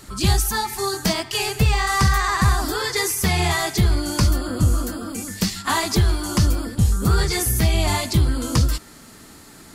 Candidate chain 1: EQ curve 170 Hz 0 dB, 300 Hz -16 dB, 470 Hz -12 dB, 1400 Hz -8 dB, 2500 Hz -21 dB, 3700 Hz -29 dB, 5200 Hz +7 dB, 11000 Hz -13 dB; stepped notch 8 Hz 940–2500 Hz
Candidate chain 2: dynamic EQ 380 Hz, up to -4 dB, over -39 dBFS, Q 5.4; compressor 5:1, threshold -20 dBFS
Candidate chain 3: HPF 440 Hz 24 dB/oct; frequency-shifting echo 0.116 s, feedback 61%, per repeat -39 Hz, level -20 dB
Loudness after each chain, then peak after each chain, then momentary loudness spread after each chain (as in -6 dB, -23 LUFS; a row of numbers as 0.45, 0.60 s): -23.0, -24.5, -24.0 LUFS; -7.0, -10.5, -6.0 dBFS; 7, 7, 11 LU